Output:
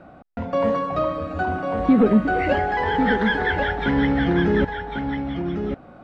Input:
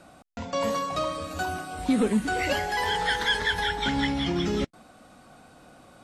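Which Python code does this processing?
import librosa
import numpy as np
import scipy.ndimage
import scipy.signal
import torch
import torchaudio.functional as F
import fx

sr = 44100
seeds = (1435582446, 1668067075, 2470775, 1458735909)

p1 = scipy.signal.sosfilt(scipy.signal.butter(2, 1500.0, 'lowpass', fs=sr, output='sos'), x)
p2 = fx.peak_eq(p1, sr, hz=1000.0, db=-4.5, octaves=0.44)
p3 = p2 + fx.echo_single(p2, sr, ms=1097, db=-6.5, dry=0)
y = F.gain(torch.from_numpy(p3), 7.5).numpy()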